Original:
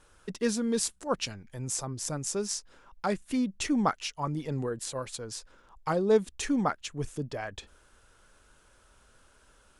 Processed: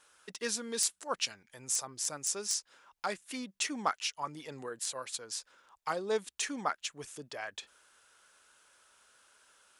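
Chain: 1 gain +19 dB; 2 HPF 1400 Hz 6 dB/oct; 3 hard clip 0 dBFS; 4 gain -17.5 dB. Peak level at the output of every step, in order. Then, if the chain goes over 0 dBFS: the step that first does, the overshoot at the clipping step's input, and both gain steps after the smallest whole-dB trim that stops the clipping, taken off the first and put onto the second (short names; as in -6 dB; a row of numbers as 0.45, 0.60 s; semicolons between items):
+8.0, +8.0, 0.0, -17.5 dBFS; step 1, 8.0 dB; step 1 +11 dB, step 4 -9.5 dB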